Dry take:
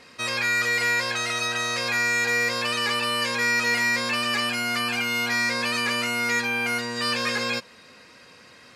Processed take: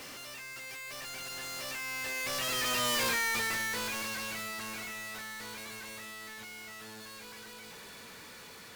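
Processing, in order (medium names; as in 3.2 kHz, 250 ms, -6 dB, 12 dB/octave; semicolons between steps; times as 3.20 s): one-bit comparator; Doppler pass-by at 2.99 s, 32 m/s, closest 16 m; trim -4 dB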